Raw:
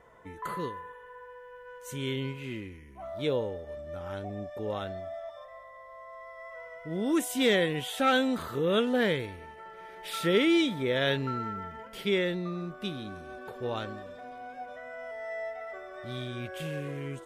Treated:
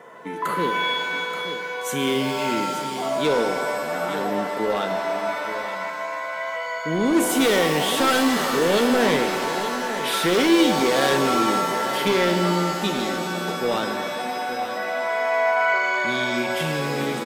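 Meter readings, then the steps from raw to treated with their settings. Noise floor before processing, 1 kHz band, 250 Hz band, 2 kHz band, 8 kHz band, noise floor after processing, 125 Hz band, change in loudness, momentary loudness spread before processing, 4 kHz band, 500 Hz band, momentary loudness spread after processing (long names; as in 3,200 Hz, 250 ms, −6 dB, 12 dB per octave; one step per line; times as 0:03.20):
−49 dBFS, +14.0 dB, +8.5 dB, +12.0 dB, +14.5 dB, −30 dBFS, +5.0 dB, +9.0 dB, 21 LU, +10.0 dB, +9.0 dB, 9 LU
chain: Butterworth high-pass 160 Hz 36 dB per octave
in parallel at +1 dB: downward compressor, threshold −37 dBFS, peak gain reduction 16.5 dB
on the sum: hard clipping −23.5 dBFS, distortion −10 dB
single-tap delay 878 ms −11 dB
reverb with rising layers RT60 2.4 s, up +7 semitones, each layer −2 dB, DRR 6 dB
level +6.5 dB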